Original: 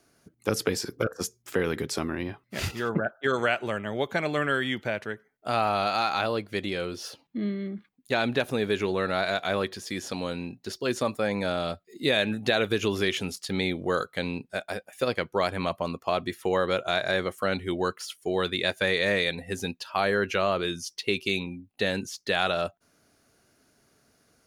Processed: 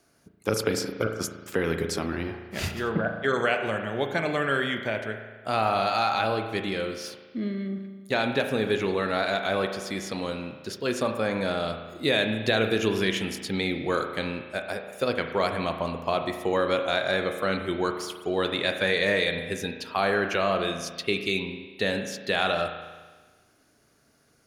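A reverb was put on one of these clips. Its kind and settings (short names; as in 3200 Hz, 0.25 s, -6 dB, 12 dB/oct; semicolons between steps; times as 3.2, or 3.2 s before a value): spring tank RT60 1.4 s, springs 36 ms, chirp 70 ms, DRR 5.5 dB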